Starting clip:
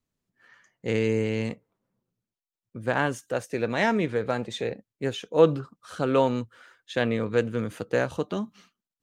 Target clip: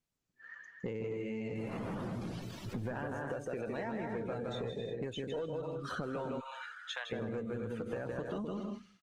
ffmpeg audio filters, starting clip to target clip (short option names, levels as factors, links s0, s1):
-filter_complex "[0:a]asettb=1/sr,asplit=3[s0][s1][s2];[s0]atrim=end=1.464[s3];[s1]atrim=start=1.46:end=2.88,asetpts=PTS-STARTPTS,afade=t=in:d=0.004:c=qsin,afade=t=out:st=1.416:d=0.004:c=qsin,aeval=exprs='val(0)+0.5*0.0141*sgn(val(0))':c=same[s4];[s2]atrim=start=2.876[s5];[s3][s4]acrossfade=d=0.004:c1=hsin:c2=qsin[s6];[s6][s5]acrossfade=d=0.004:c1=qsin:c2=hsin,acrossover=split=1700|6100[s7][s8][s9];[s7]acompressor=threshold=0.0178:ratio=4[s10];[s8]acompressor=threshold=0.00316:ratio=4[s11];[s9]acompressor=threshold=0.00126:ratio=4[s12];[s10][s11][s12]amix=inputs=3:normalize=0,asplit=3[s13][s14][s15];[s13]afade=t=out:st=4.2:d=0.02[s16];[s14]asplit=2[s17][s18];[s18]adelay=26,volume=0.631[s19];[s17][s19]amix=inputs=2:normalize=0,afade=t=in:st=4.2:d=0.02,afade=t=out:st=4.7:d=0.02[s20];[s15]afade=t=in:st=4.7:d=0.02[s21];[s16][s20][s21]amix=inputs=3:normalize=0,aecho=1:1:160|256|313.6|348.2|368.9:0.631|0.398|0.251|0.158|0.1,aresample=32000,aresample=44100,asplit=3[s22][s23][s24];[s22]afade=t=out:st=6.39:d=0.02[s25];[s23]highpass=f=870:w=0.5412,highpass=f=870:w=1.3066,afade=t=in:st=6.39:d=0.02,afade=t=out:st=7.11:d=0.02[s26];[s24]afade=t=in:st=7.11:d=0.02[s27];[s25][s26][s27]amix=inputs=3:normalize=0,asoftclip=type=tanh:threshold=0.0355,acompressor=threshold=0.00794:ratio=12,afftdn=nr=13:nf=-53,volume=2.24" -ar 48000 -c:a libopus -b:a 24k